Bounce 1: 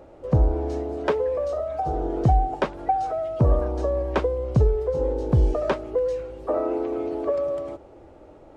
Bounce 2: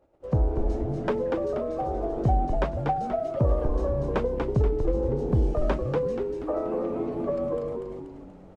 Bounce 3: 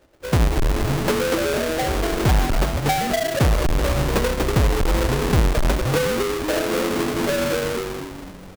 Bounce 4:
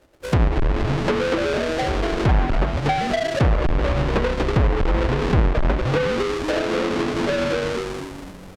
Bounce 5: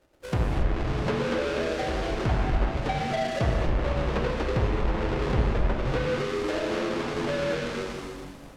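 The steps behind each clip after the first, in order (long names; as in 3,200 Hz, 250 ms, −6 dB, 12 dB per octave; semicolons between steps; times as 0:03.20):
echo with shifted repeats 240 ms, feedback 47%, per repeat −96 Hz, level −3.5 dB; noise gate −45 dBFS, range −16 dB; dynamic equaliser 4,800 Hz, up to −3 dB, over −46 dBFS, Q 0.71; level −4.5 dB
each half-wave held at its own peak; in parallel at −1 dB: brickwall limiter −22.5 dBFS, peak gain reduction 31 dB; on the sum: level −1.5 dB
treble cut that deepens with the level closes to 2,300 Hz, closed at −15 dBFS
reverb whose tail is shaped and stops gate 310 ms flat, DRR 1 dB; level −8.5 dB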